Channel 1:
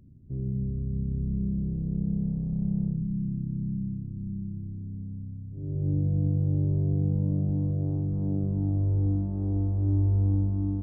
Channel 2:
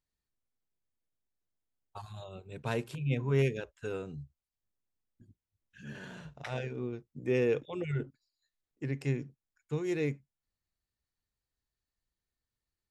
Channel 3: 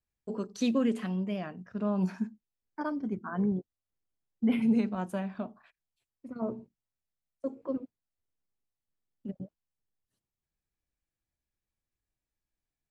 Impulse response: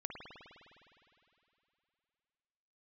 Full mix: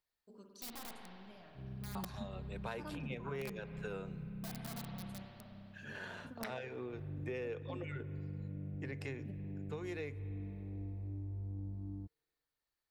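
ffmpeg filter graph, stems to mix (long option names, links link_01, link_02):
-filter_complex "[0:a]agate=range=-7dB:threshold=-32dB:ratio=16:detection=peak,adelay=1250,volume=-15.5dB[link_01];[1:a]acrossover=split=440 3300:gain=0.224 1 0.178[link_02][link_03][link_04];[link_02][link_03][link_04]amix=inputs=3:normalize=0,acontrast=83,volume=-5dB,asplit=3[link_05][link_06][link_07];[link_06]volume=-13dB[link_08];[2:a]equalizer=frequency=4400:width=0.56:gain=5,aeval=exprs='(mod(11.9*val(0)+1,2)-1)/11.9':channel_layout=same,volume=-11.5dB,asplit=2[link_09][link_10];[link_10]volume=-9dB[link_11];[link_07]apad=whole_len=569173[link_12];[link_09][link_12]sidechaingate=range=-33dB:threshold=-60dB:ratio=16:detection=peak[link_13];[3:a]atrim=start_sample=2205[link_14];[link_08][link_11]amix=inputs=2:normalize=0[link_15];[link_15][link_14]afir=irnorm=-1:irlink=0[link_16];[link_01][link_05][link_13][link_16]amix=inputs=4:normalize=0,aexciter=amount=1.7:drive=7.5:freq=3900,acompressor=threshold=-39dB:ratio=6"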